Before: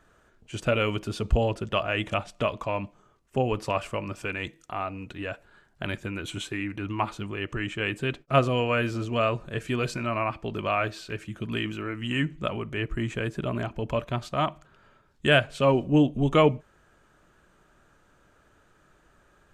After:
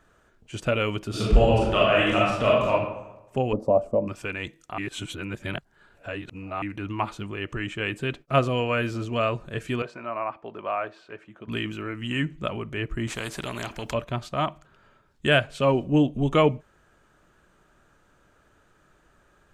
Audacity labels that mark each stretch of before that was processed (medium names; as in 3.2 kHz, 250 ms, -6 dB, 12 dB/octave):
1.090000	2.710000	reverb throw, RT60 1 s, DRR -6 dB
3.530000	4.080000	FFT filter 150 Hz 0 dB, 240 Hz +11 dB, 360 Hz +2 dB, 590 Hz +12 dB, 1.8 kHz -26 dB, 3.2 kHz -25 dB, 5.7 kHz -17 dB
4.780000	6.620000	reverse
9.820000	11.480000	band-pass filter 810 Hz, Q 0.96
13.070000	13.940000	spectrum-flattening compressor 2:1